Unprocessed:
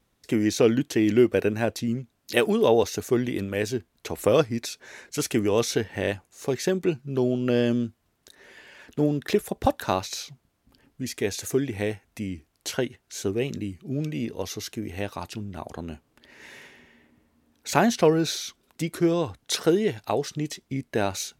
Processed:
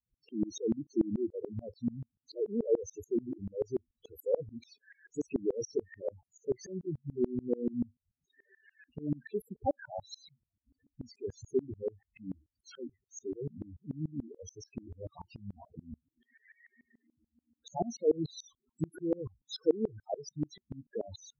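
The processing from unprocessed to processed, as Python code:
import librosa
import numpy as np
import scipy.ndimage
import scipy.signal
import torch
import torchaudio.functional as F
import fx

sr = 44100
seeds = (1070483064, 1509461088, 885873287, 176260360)

y = fx.high_shelf(x, sr, hz=3300.0, db=4.5)
y = fx.spec_topn(y, sr, count=4)
y = fx.tremolo_decay(y, sr, direction='swelling', hz=6.9, depth_db=28)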